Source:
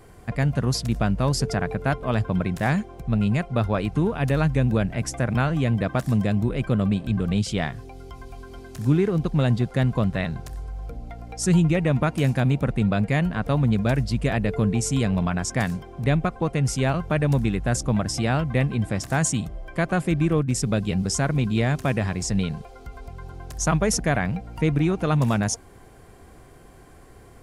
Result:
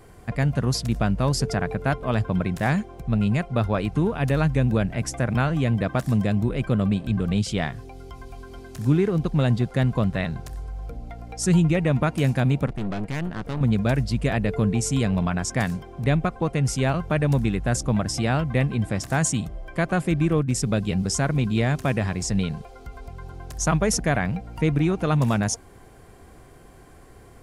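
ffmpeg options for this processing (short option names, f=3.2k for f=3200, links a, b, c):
-filter_complex "[0:a]asettb=1/sr,asplit=3[a][b][c];[a]atrim=end=12.664[d];[b]atrim=start=12.66:end=13.61,asetpts=PTS-STARTPTS,afade=t=in:d=0.004:c=qsin,afade=t=out:st=0.946:d=0.004:c=qsin,aeval=exprs='(tanh(17.8*val(0)+0.7)-tanh(0.7))/17.8':c=same[e];[c]atrim=start=13.606[f];[d][e]acrossfade=d=0.004:c1=hsin:c2=qsin[g];[g][f]acrossfade=d=0.004:c1=qsin:c2=hsin"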